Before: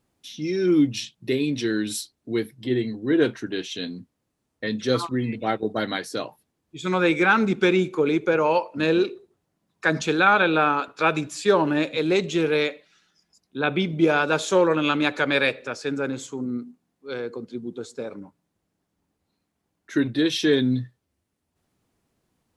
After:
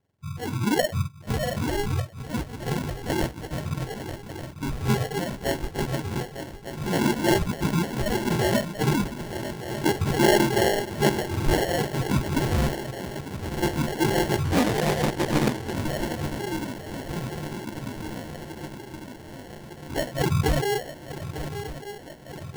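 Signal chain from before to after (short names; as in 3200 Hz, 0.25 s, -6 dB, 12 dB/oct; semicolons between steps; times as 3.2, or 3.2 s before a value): spectrum mirrored in octaves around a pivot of 720 Hz; dynamic EQ 200 Hz, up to -5 dB, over -36 dBFS, Q 1.6; on a send: swung echo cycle 1.198 s, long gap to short 3:1, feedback 67%, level -12.5 dB; on the sum: sample-and-hold 36×; 14.44–15.75 Doppler distortion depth 0.77 ms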